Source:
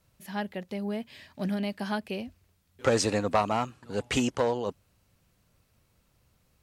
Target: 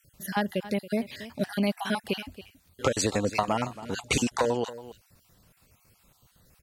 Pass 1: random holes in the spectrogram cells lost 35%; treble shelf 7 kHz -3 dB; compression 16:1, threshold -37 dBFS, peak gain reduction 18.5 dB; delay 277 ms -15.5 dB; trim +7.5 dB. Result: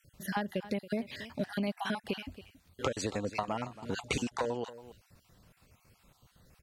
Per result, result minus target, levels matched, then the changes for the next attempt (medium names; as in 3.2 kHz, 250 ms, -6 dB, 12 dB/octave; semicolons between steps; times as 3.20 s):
compression: peak gain reduction +8 dB; 8 kHz band -4.0 dB
change: compression 16:1, threshold -28.5 dBFS, peak gain reduction 11 dB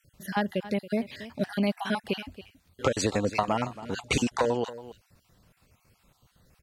8 kHz band -3.5 dB
change: treble shelf 7 kHz +6.5 dB